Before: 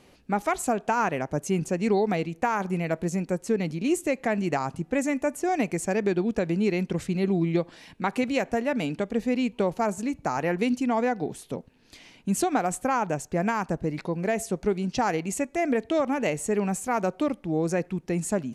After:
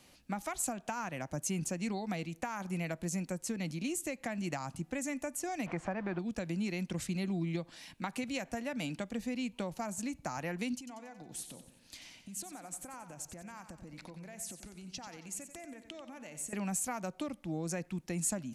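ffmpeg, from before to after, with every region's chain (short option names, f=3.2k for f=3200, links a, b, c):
-filter_complex "[0:a]asettb=1/sr,asplit=3[a][b][c];[a]atrim=end=5.664[d];[b]atrim=start=5.66:end=6.19,asetpts=PTS-STARTPTS,afade=t=in:d=0.004:c=qsin,afade=t=out:st=0.526:d=0.004:c=qsin,aeval=exprs='val(0)+0.5*0.0126*sgn(val(0))':c=same,lowpass=2.2k,equalizer=f=980:w=0.69:g=12[e];[c]atrim=start=6.186[f];[d][e]acrossfade=d=0.004:c1=hsin:c2=qsin[g];[g][f]acrossfade=d=0.004:c1=qsin:c2=hsin,asettb=1/sr,asplit=3[h][i][j];[h]atrim=end=10.784[k];[i]atrim=start=10.78:end=16.53,asetpts=PTS-STARTPTS,afade=t=in:d=0.004:c=qsin,afade=t=out:st=5.746:d=0.004:c=qsin,acompressor=threshold=-38dB:ratio=8:attack=3.2:release=140:knee=1:detection=peak,aecho=1:1:91|182|273|364|455:0.282|0.144|0.0733|0.0374|0.0191,atrim=end_sample=253575[l];[j]atrim=start=16.526[m];[k][l]acrossfade=d=0.004:c1=hsin:c2=qsin[n];[n][m]acrossfade=d=0.004:c1=qsin:c2=hsin,equalizer=f=420:t=o:w=0.22:g=-13.5,acrossover=split=180[o][p];[p]acompressor=threshold=-29dB:ratio=6[q];[o][q]amix=inputs=2:normalize=0,highshelf=f=3.3k:g=11,volume=-7dB"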